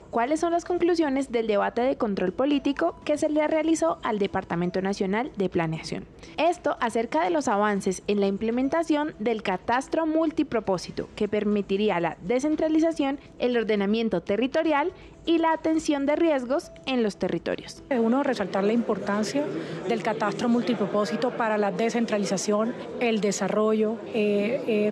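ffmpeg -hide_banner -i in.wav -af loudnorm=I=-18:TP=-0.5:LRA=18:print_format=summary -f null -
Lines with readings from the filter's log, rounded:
Input Integrated:    -25.5 LUFS
Input True Peak:     -11.3 dBTP
Input LRA:             1.2 LU
Input Threshold:     -35.5 LUFS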